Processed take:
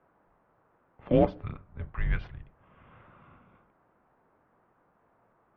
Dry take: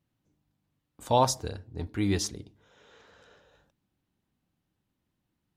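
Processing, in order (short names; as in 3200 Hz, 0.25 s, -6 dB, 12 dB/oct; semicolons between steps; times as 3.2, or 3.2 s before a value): octaver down 2 oct, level +3 dB; mistuned SSB -340 Hz 240–2700 Hz; in parallel at -9.5 dB: soft clip -25.5 dBFS, distortion -6 dB; on the sum: band noise 95–1300 Hz -68 dBFS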